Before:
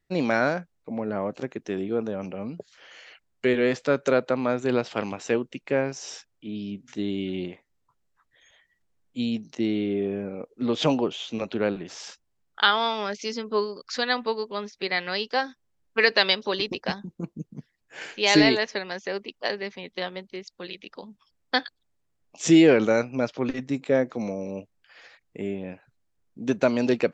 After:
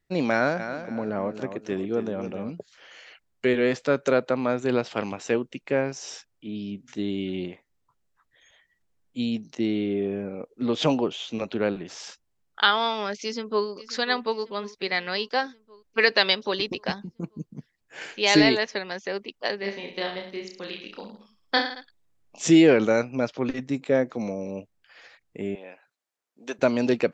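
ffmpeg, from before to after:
ffmpeg -i in.wav -filter_complex "[0:a]asplit=3[link_01][link_02][link_03];[link_01]afade=type=out:start_time=0.58:duration=0.02[link_04];[link_02]aecho=1:1:276|552|828:0.316|0.098|0.0304,afade=type=in:start_time=0.58:duration=0.02,afade=type=out:start_time=2.5:duration=0.02[link_05];[link_03]afade=type=in:start_time=2.5:duration=0.02[link_06];[link_04][link_05][link_06]amix=inputs=3:normalize=0,asplit=2[link_07][link_08];[link_08]afade=type=in:start_time=13.23:duration=0.01,afade=type=out:start_time=13.66:duration=0.01,aecho=0:1:540|1080|1620|2160|2700|3240|3780:0.149624|0.0972553|0.063216|0.0410904|0.0267087|0.0173607|0.0112844[link_09];[link_07][link_09]amix=inputs=2:normalize=0,asplit=3[link_10][link_11][link_12];[link_10]afade=type=out:start_time=19.63:duration=0.02[link_13];[link_11]aecho=1:1:30|66|109.2|161|223.2:0.631|0.398|0.251|0.158|0.1,afade=type=in:start_time=19.63:duration=0.02,afade=type=out:start_time=22.45:duration=0.02[link_14];[link_12]afade=type=in:start_time=22.45:duration=0.02[link_15];[link_13][link_14][link_15]amix=inputs=3:normalize=0,asettb=1/sr,asplit=3[link_16][link_17][link_18];[link_16]atrim=end=25.554[link_19];[link_17]atrim=start=25.55:end=26.59,asetpts=PTS-STARTPTS,afade=type=in:duration=0.004:curve=qsin,afade=type=out:start_time=1.036:duration=0.004:curve=qsin,highpass=580[link_20];[link_18]atrim=start=26.586[link_21];[link_19][link_20]acrossfade=duration=0.004:curve1=hsin:curve2=qsin[link_22];[link_22][link_21]acrossfade=duration=0.004:curve1=qsin:curve2=hsin" out.wav

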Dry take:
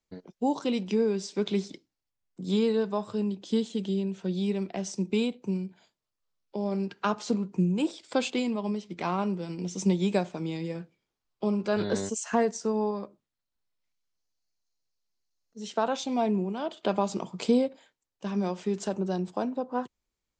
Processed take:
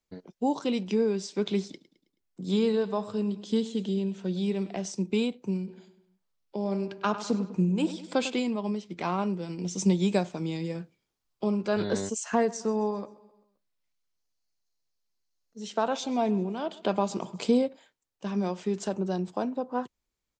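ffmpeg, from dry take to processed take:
ffmpeg -i in.wav -filter_complex "[0:a]asettb=1/sr,asplit=3[link_01][link_02][link_03];[link_01]atrim=end=1.704[link_04];[link_02]atrim=start=1.7:end=4.86,asetpts=PTS-STARTPTS,afade=type=in:duration=0.004:curve=qsin,afade=type=out:start_time=3.156:duration=0.004:curve=qsin,aecho=1:1:107|214|321|428:0.158|0.0745|0.035|0.0165,atrim=end_sample=139356[link_05];[link_03]atrim=start=4.856[link_06];[link_04][link_05]acrossfade=duration=0.004:curve1=hsin:curve2=qsin[link_07];[link_07][link_06]acrossfade=duration=0.004:curve1=qsin:curve2=hsin,asplit=3[link_08][link_09][link_10];[link_08]afade=type=out:start_time=5.66:duration=0.02[link_11];[link_09]asplit=2[link_12][link_13];[link_13]adelay=100,lowpass=frequency=3900:poles=1,volume=-12dB,asplit=2[link_14][link_15];[link_15]adelay=100,lowpass=frequency=3900:poles=1,volume=0.51,asplit=2[link_16][link_17];[link_17]adelay=100,lowpass=frequency=3900:poles=1,volume=0.51,asplit=2[link_18][link_19];[link_19]adelay=100,lowpass=frequency=3900:poles=1,volume=0.51,asplit=2[link_20][link_21];[link_21]adelay=100,lowpass=frequency=3900:poles=1,volume=0.51[link_22];[link_12][link_14][link_16][link_18][link_20][link_22]amix=inputs=6:normalize=0,afade=type=in:start_time=5.66:duration=0.02,afade=type=out:start_time=8.34:duration=0.02[link_23];[link_10]afade=type=in:start_time=8.34:duration=0.02[link_24];[link_11][link_23][link_24]amix=inputs=3:normalize=0,asettb=1/sr,asplit=3[link_25][link_26][link_27];[link_25]atrim=end=9.654[link_28];[link_26]atrim=start=9.65:end=11.44,asetpts=PTS-STARTPTS,afade=type=in:duration=0.004:curve=qsin,afade=type=out:start_time=1.786:duration=0.004:curve=qsin,bass=frequency=250:gain=2,treble=frequency=4000:gain=4[link_29];[link_27]atrim=start=11.436[link_30];[link_28][link_29]acrossfade=duration=0.004:curve1=hsin:curve2=qsin[link_31];[link_31][link_30]acrossfade=duration=0.004:curve1=qsin:curve2=hsin,asplit=3[link_32][link_33][link_34];[link_32]afade=type=out:start_time=12.48:duration=0.02[link_35];[link_33]aecho=1:1:131|262|393|524:0.0944|0.0472|0.0236|0.0118,afade=type=in:start_time=12.48:duration=0.02,afade=type=out:start_time=17.62:duration=0.02[link_36];[link_34]afade=type=in:start_time=17.62:duration=0.02[link_37];[link_35][link_36][link_37]amix=inputs=3:normalize=0" out.wav

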